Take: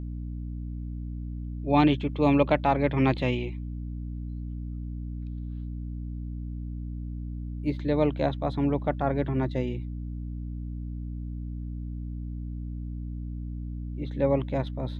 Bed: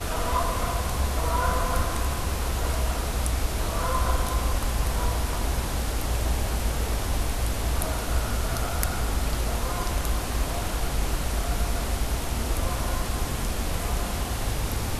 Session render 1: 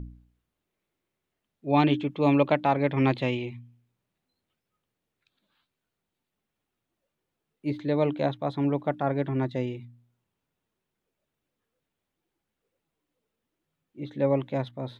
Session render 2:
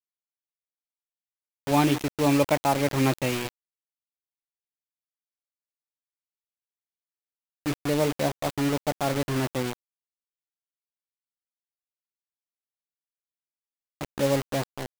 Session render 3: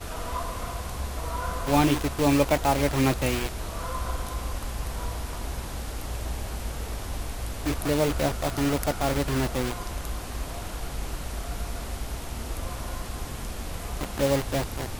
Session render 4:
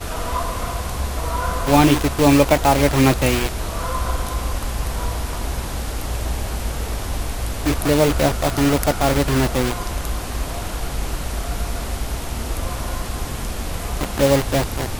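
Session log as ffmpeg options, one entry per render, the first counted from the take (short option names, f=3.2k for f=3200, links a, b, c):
-af "bandreject=f=60:t=h:w=4,bandreject=f=120:t=h:w=4,bandreject=f=180:t=h:w=4,bandreject=f=240:t=h:w=4,bandreject=f=300:t=h:w=4"
-af "acrusher=bits=4:mix=0:aa=0.000001"
-filter_complex "[1:a]volume=-6.5dB[a];[0:a][a]amix=inputs=2:normalize=0"
-af "volume=8dB,alimiter=limit=-1dB:level=0:latency=1"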